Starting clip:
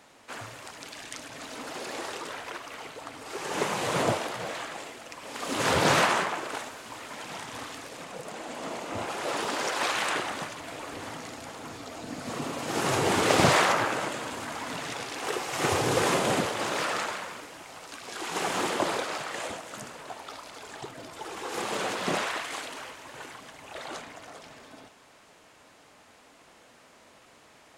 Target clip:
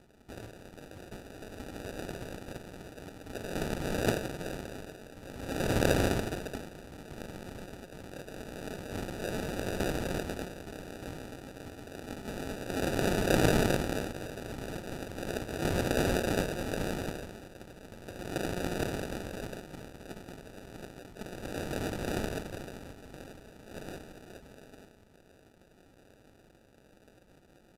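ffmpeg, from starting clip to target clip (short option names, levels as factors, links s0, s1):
-af "tremolo=f=190:d=0.889,acrusher=samples=41:mix=1:aa=0.000001,aresample=32000,aresample=44100"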